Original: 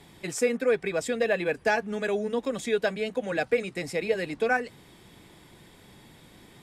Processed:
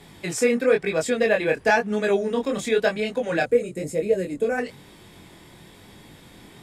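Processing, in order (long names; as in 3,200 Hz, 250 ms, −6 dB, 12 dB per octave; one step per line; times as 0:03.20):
chorus effect 1 Hz, delay 19 ms, depth 6.3 ms
gain on a spectral selection 0:03.45–0:04.58, 650–6,300 Hz −12 dB
level +8 dB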